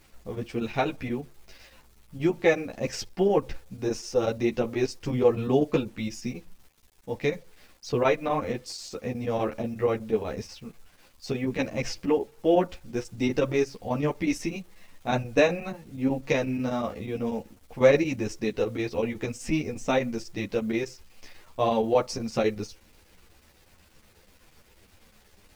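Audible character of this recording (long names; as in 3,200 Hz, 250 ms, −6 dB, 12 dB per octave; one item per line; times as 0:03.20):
a quantiser's noise floor 10 bits, dither none
chopped level 8.2 Hz, depth 60%, duty 85%
a shimmering, thickened sound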